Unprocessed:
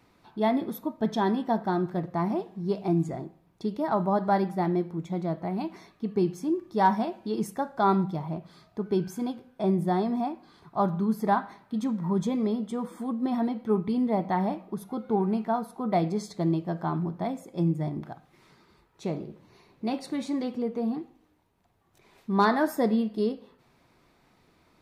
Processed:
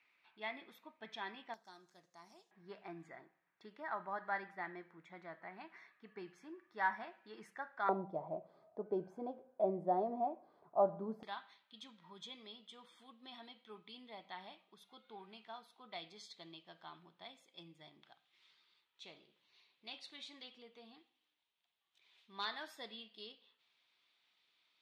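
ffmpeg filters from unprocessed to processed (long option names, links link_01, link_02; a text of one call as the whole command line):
ffmpeg -i in.wav -af "asetnsamples=nb_out_samples=441:pad=0,asendcmd='1.54 bandpass f 6600;2.51 bandpass f 1800;7.89 bandpass f 600;11.23 bandpass f 3300',bandpass=frequency=2400:width_type=q:width=3.5:csg=0" out.wav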